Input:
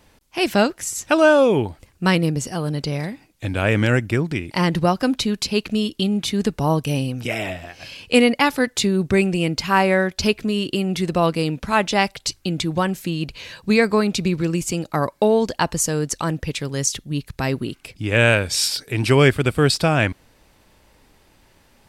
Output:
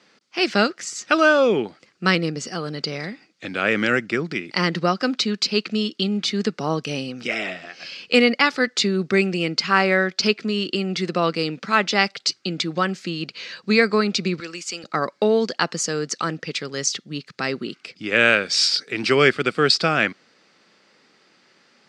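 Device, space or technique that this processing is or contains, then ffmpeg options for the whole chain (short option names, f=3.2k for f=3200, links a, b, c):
television speaker: -filter_complex "[0:a]highpass=f=190:w=0.5412,highpass=f=190:w=1.3066,equalizer=f=280:t=q:w=4:g=-5,equalizer=f=630:t=q:w=4:g=-4,equalizer=f=930:t=q:w=4:g=-8,equalizer=f=1.3k:t=q:w=4:g=6,equalizer=f=2k:t=q:w=4:g=3,equalizer=f=4.7k:t=q:w=4:g=6,lowpass=f=6.6k:w=0.5412,lowpass=f=6.6k:w=1.3066,asettb=1/sr,asplit=3[a][b][c];[a]atrim=end=14.404[d];[b]atrim=start=14.4:end=14.84,asetpts=PTS-STARTPTS,afade=t=in:d=0.004:c=qsin,afade=t=out:st=0.436:d=0.004:c=qsin,highpass=f=1.2k:p=1[e];[c]atrim=start=14.836[f];[d][e]acrossfade=d=0.004:c1=hsin:c2=qsin[g];[g][f]acrossfade=d=0.004:c1=qsin:c2=hsin"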